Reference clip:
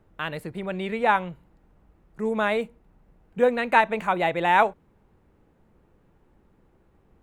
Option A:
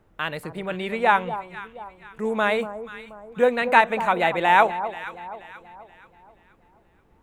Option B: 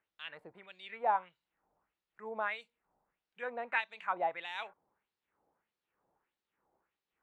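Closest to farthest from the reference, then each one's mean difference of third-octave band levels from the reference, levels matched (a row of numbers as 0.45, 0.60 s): A, B; 2.5, 7.5 dB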